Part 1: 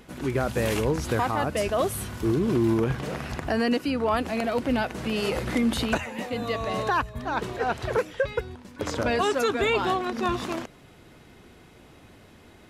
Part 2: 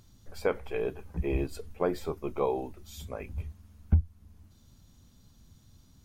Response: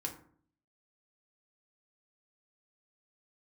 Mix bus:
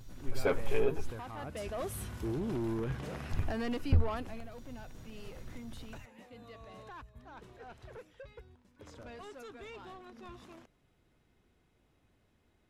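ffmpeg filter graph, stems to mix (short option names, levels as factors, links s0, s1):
-filter_complex "[0:a]asoftclip=type=tanh:threshold=0.0944,volume=0.335,afade=t=in:st=1.27:d=0.71:silence=0.421697,afade=t=out:st=4.08:d=0.36:silence=0.237137[s0];[1:a]aecho=1:1:7.4:0.93,volume=0.944,asplit=3[s1][s2][s3];[s1]atrim=end=1.11,asetpts=PTS-STARTPTS,afade=t=out:st=1.106:d=0.004:c=hsin[s4];[s2]atrim=start=1.11:end=3.31,asetpts=PTS-STARTPTS,volume=0[s5];[s3]atrim=start=3.31,asetpts=PTS-STARTPTS,afade=t=in:d=0.004:c=hsin[s6];[s4][s5][s6]concat=n=3:v=0:a=1[s7];[s0][s7]amix=inputs=2:normalize=0,asoftclip=type=tanh:threshold=0.0841,lowshelf=f=66:g=11.5,bandreject=f=4500:w=30"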